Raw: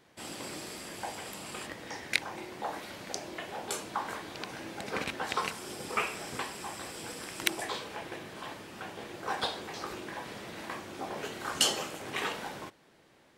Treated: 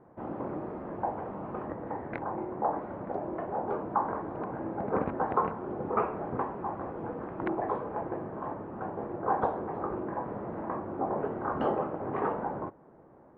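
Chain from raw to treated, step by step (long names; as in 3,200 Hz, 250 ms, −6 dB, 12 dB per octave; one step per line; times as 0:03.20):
low-pass filter 1,100 Hz 24 dB per octave
level +8 dB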